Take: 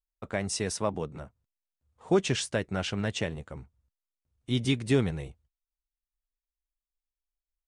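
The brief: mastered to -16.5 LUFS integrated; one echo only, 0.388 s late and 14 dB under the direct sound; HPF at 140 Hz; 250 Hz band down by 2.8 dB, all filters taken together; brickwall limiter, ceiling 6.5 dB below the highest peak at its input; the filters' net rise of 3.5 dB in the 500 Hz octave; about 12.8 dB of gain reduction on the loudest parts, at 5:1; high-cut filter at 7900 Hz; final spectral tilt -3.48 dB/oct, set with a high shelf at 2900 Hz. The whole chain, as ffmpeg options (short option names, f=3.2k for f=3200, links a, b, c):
-af "highpass=140,lowpass=7.9k,equalizer=f=250:t=o:g=-5.5,equalizer=f=500:t=o:g=6.5,highshelf=f=2.9k:g=4,acompressor=threshold=-32dB:ratio=5,alimiter=level_in=1.5dB:limit=-24dB:level=0:latency=1,volume=-1.5dB,aecho=1:1:388:0.2,volume=22dB"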